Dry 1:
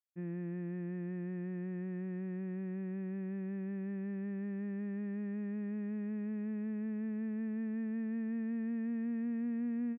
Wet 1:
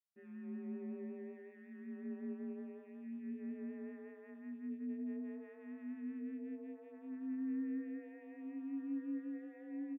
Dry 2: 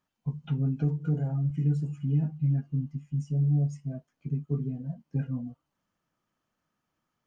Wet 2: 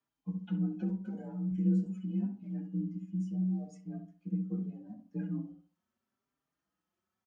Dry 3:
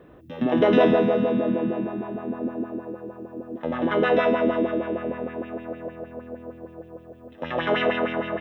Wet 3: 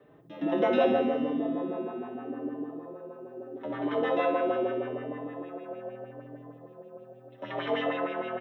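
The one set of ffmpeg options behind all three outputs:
-filter_complex "[0:a]afreqshift=42,asplit=2[a][b];[b]adelay=65,lowpass=f=1.2k:p=1,volume=-6dB,asplit=2[c][d];[d]adelay=65,lowpass=f=1.2k:p=1,volume=0.35,asplit=2[e][f];[f]adelay=65,lowpass=f=1.2k:p=1,volume=0.35,asplit=2[g][h];[h]adelay=65,lowpass=f=1.2k:p=1,volume=0.35[i];[a][c][e][g][i]amix=inputs=5:normalize=0,asplit=2[j][k];[k]adelay=4.6,afreqshift=0.79[l];[j][l]amix=inputs=2:normalize=1,volume=-4.5dB"

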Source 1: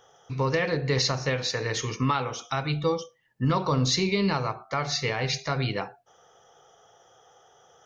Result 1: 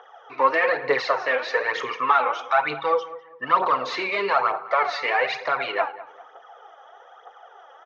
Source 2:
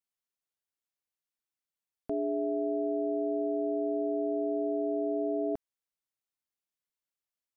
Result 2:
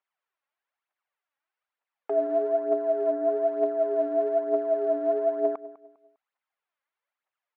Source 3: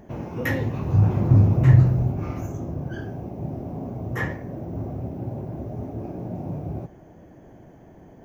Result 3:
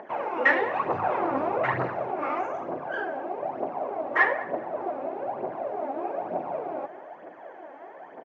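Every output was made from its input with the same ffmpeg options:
-filter_complex "[0:a]asplit=2[a][b];[b]highpass=f=720:p=1,volume=22dB,asoftclip=type=tanh:threshold=-3dB[c];[a][c]amix=inputs=2:normalize=0,lowpass=f=1.1k:p=1,volume=-6dB,aphaser=in_gain=1:out_gain=1:delay=3.8:decay=0.59:speed=1.1:type=triangular,highpass=680,lowpass=2.5k,asplit=2[d][e];[e]adelay=201,lowpass=f=1.9k:p=1,volume=-16dB,asplit=2[f][g];[g]adelay=201,lowpass=f=1.9k:p=1,volume=0.33,asplit=2[h][i];[i]adelay=201,lowpass=f=1.9k:p=1,volume=0.33[j];[f][h][j]amix=inputs=3:normalize=0[k];[d][k]amix=inputs=2:normalize=0"

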